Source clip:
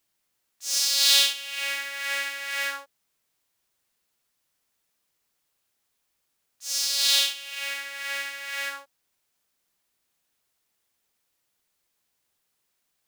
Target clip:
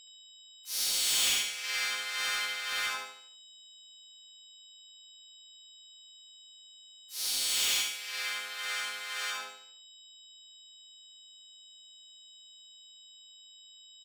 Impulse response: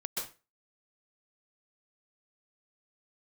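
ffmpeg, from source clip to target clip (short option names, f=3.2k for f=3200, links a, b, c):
-filter_complex "[0:a]lowpass=8.1k,equalizer=f=770:w=7.6:g=-4.5,acrossover=split=670|2900|5100[a][b][c][d];[a]alimiter=level_in=26dB:limit=-24dB:level=0:latency=1:release=73,volume=-26dB[e];[e][b][c][d]amix=inputs=4:normalize=0,asetrate=41057,aresample=44100,aeval=exprs='val(0)+0.00355*sin(2*PI*3800*n/s)':c=same,asplit=4[f][g][h][i];[g]asetrate=35002,aresample=44100,atempo=1.25992,volume=-4dB[j];[h]asetrate=58866,aresample=44100,atempo=0.749154,volume=-8dB[k];[i]asetrate=88200,aresample=44100,atempo=0.5,volume=-1dB[l];[f][j][k][l]amix=inputs=4:normalize=0,asoftclip=type=hard:threshold=-18.5dB,aecho=1:1:74|148|222|296|370:0.531|0.212|0.0849|0.034|0.0136,volume=-7dB"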